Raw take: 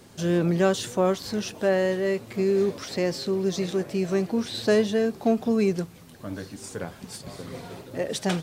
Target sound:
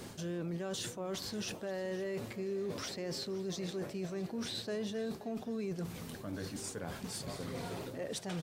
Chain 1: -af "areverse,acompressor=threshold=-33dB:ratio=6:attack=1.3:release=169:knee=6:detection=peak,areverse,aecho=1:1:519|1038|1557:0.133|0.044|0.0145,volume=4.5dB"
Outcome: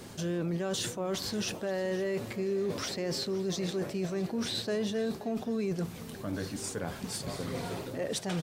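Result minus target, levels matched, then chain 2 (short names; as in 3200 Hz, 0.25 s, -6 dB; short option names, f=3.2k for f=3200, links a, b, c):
compressor: peak gain reduction -6 dB
-af "areverse,acompressor=threshold=-40.5dB:ratio=6:attack=1.3:release=169:knee=6:detection=peak,areverse,aecho=1:1:519|1038|1557:0.133|0.044|0.0145,volume=4.5dB"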